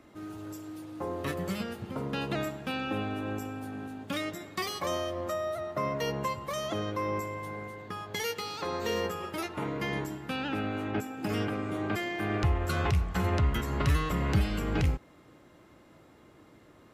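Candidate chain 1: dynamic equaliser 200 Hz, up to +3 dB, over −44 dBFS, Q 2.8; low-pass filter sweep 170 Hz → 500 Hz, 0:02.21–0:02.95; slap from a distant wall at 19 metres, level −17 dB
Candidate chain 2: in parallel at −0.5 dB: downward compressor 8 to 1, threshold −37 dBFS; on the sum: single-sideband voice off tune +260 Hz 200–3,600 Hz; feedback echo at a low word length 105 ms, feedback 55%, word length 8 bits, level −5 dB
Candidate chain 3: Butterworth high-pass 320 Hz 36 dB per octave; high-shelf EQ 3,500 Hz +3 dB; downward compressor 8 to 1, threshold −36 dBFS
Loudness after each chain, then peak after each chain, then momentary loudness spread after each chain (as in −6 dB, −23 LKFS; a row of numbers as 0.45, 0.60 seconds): −30.5, −30.0, −40.0 LKFS; −13.0, −16.5, −21.5 dBFS; 10, 5, 11 LU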